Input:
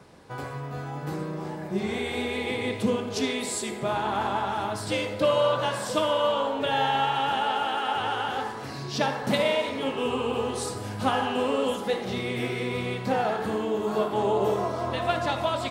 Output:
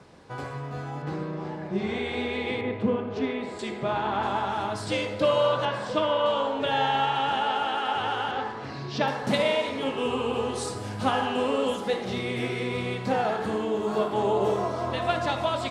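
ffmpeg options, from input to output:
-af "asetnsamples=n=441:p=0,asendcmd='1.02 lowpass f 4500;2.61 lowpass f 1900;3.59 lowpass f 4200;4.23 lowpass f 8100;5.65 lowpass f 3600;6.26 lowpass f 7200;8.31 lowpass f 4100;9.08 lowpass f 9800',lowpass=8.5k"

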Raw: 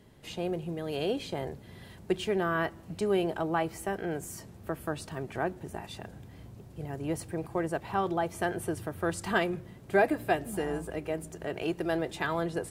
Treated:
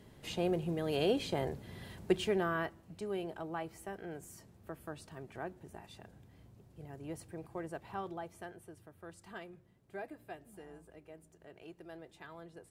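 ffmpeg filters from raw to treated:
-af "afade=t=out:st=2.02:d=0.81:silence=0.281838,afade=t=out:st=7.93:d=0.7:silence=0.354813"

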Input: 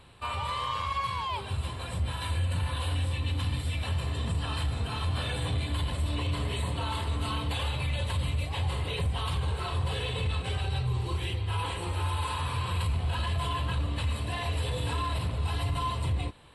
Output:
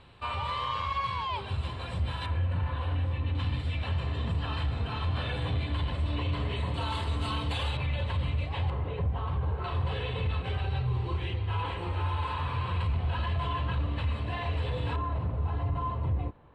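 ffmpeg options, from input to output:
-af "asetnsamples=n=441:p=0,asendcmd='2.26 lowpass f 1900;3.35 lowpass f 3300;6.74 lowpass f 6800;7.77 lowpass f 2900;8.7 lowpass f 1300;9.64 lowpass f 2700;14.96 lowpass f 1200',lowpass=4.5k"

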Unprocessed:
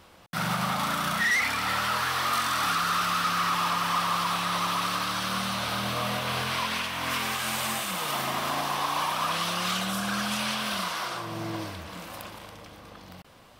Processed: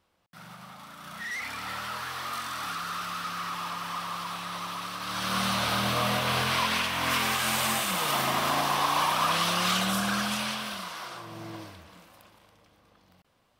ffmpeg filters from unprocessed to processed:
-af "volume=2.5dB,afade=t=in:st=0.95:d=0.62:silence=0.298538,afade=t=in:st=4.99:d=0.46:silence=0.298538,afade=t=out:st=9.94:d=0.85:silence=0.334965,afade=t=out:st=11.54:d=0.59:silence=0.398107"

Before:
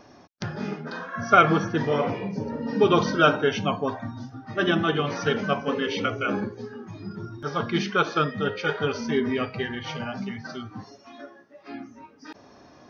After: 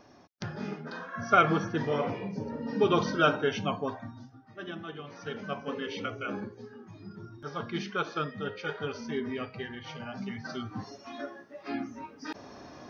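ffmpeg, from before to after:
-af "volume=15.5dB,afade=t=out:st=3.81:d=0.7:silence=0.251189,afade=t=in:st=5.12:d=0.56:silence=0.375837,afade=t=in:st=10.02:d=1.22:silence=0.237137"

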